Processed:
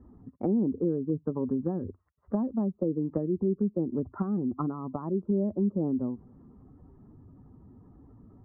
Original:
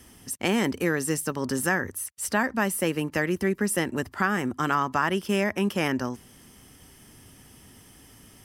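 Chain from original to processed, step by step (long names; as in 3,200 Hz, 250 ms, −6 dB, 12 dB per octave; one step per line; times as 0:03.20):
expanding power law on the bin magnitudes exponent 1.6
treble cut that deepens with the level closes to 410 Hz, closed at −23 dBFS
Chebyshev low-pass filter 1,200 Hz, order 4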